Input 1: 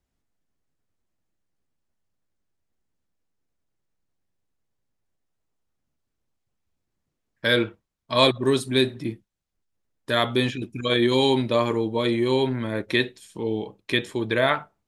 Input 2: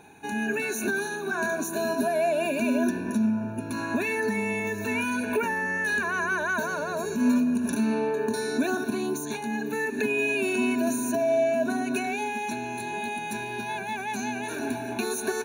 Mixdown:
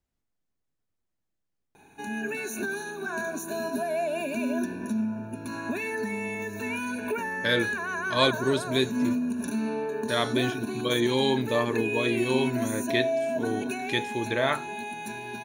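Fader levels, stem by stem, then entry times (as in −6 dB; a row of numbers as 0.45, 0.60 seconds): −4.5, −4.0 decibels; 0.00, 1.75 seconds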